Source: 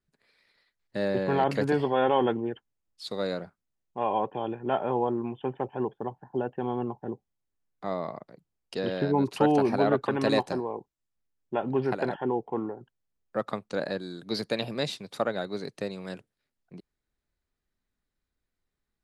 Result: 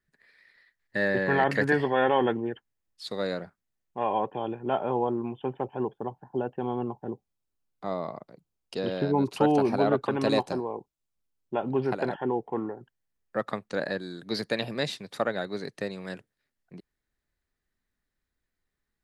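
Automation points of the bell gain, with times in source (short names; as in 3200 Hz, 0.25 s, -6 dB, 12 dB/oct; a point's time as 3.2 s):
bell 1800 Hz 0.37 oct
1.73 s +14.5 dB
2.38 s +5 dB
4.1 s +5 dB
4.6 s -4 dB
11.79 s -4 dB
12.53 s +6.5 dB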